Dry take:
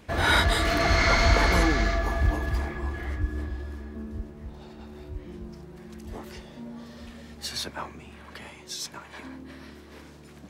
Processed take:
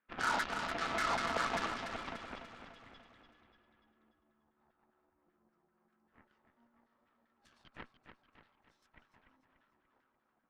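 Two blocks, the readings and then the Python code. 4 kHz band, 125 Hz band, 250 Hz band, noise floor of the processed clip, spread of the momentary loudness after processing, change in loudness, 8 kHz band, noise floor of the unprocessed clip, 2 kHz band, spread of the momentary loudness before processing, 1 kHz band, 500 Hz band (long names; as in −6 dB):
−15.0 dB, −27.5 dB, −17.0 dB, −79 dBFS, 21 LU, −11.0 dB, −14.5 dB, −48 dBFS, −13.0 dB, 23 LU, −9.0 dB, −15.0 dB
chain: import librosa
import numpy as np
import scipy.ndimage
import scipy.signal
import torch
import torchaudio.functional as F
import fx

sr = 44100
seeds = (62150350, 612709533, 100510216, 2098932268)

p1 = fx.filter_lfo_bandpass(x, sr, shape='saw_down', hz=5.1, low_hz=740.0, high_hz=1700.0, q=3.5)
p2 = fx.tilt_shelf(p1, sr, db=3.0, hz=710.0)
p3 = fx.cheby_harmonics(p2, sr, harmonics=(7, 8), levels_db=(-16, -22), full_scale_db=-19.5)
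p4 = 10.0 ** (-26.0 / 20.0) * np.tanh(p3 / 10.0 ** (-26.0 / 20.0))
p5 = fx.small_body(p4, sr, hz=(240.0, 1300.0), ring_ms=45, db=8)
y = p5 + fx.echo_feedback(p5, sr, ms=292, feedback_pct=50, wet_db=-8.5, dry=0)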